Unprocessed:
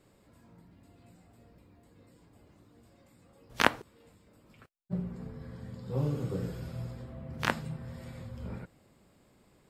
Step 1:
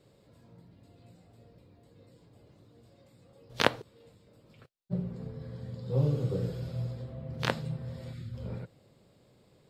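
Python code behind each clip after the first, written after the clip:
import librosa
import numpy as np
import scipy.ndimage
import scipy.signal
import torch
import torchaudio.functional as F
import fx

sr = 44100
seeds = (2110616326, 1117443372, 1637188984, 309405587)

y = fx.spec_box(x, sr, start_s=8.13, length_s=0.21, low_hz=390.0, high_hz=1200.0, gain_db=-16)
y = fx.graphic_eq(y, sr, hz=(125, 500, 4000), db=(10, 9, 9))
y = F.gain(torch.from_numpy(y), -5.0).numpy()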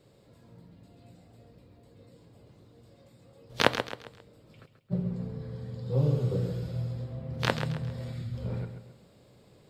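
y = fx.rider(x, sr, range_db=4, speed_s=2.0)
y = fx.echo_feedback(y, sr, ms=134, feedback_pct=37, wet_db=-9.0)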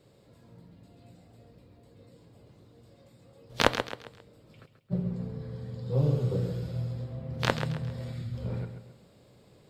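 y = fx.tube_stage(x, sr, drive_db=7.0, bias=0.6)
y = F.gain(torch.from_numpy(y), 3.0).numpy()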